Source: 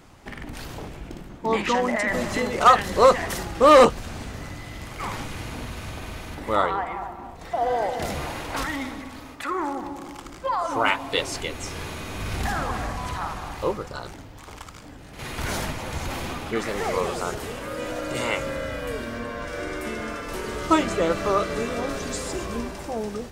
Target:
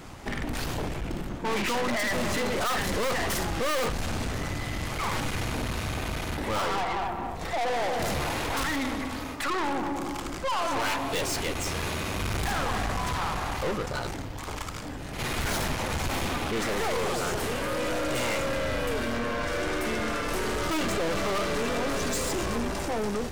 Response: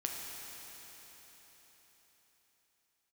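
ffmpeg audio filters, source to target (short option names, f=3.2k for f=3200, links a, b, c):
-af "aeval=exprs='(tanh(56.2*val(0)+0.45)-tanh(0.45))/56.2':c=same,volume=8.5dB"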